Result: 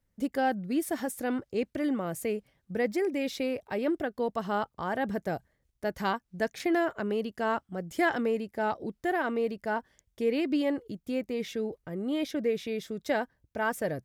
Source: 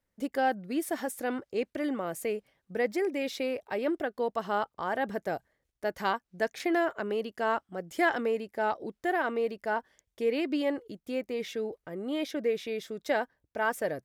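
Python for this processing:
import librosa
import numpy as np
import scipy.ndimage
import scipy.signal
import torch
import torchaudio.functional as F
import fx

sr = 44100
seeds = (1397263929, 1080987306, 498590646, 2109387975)

y = fx.bass_treble(x, sr, bass_db=10, treble_db=2)
y = F.gain(torch.from_numpy(y), -1.0).numpy()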